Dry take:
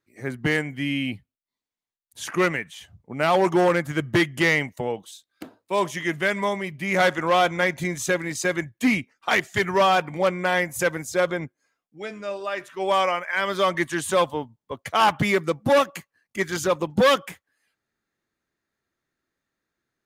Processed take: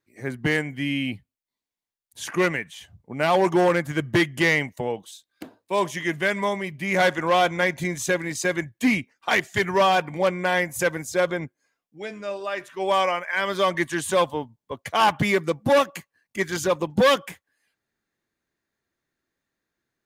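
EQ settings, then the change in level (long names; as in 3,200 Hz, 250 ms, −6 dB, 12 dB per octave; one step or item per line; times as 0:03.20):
notch filter 1,300 Hz, Q 13
0.0 dB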